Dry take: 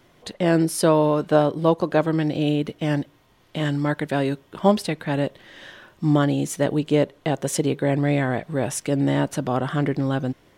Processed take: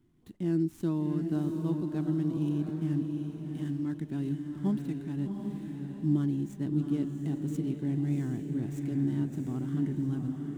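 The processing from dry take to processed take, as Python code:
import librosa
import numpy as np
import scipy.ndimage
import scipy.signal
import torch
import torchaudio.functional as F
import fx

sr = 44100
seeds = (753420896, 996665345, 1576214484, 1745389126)

y = scipy.ndimage.median_filter(x, 9, mode='constant')
y = fx.curve_eq(y, sr, hz=(340.0, 530.0, 800.0, 1800.0, 2600.0, 7900.0), db=(0, -25, -17, -16, -15, -6))
y = fx.echo_diffused(y, sr, ms=733, feedback_pct=43, wet_db=-4.5)
y = F.gain(torch.from_numpy(y), -8.0).numpy()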